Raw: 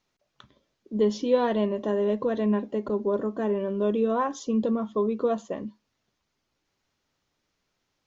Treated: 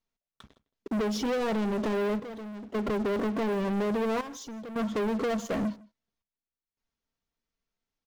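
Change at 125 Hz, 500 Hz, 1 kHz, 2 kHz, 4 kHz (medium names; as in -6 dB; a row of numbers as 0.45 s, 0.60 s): no reading, -5.0 dB, -3.0 dB, +3.5 dB, +2.5 dB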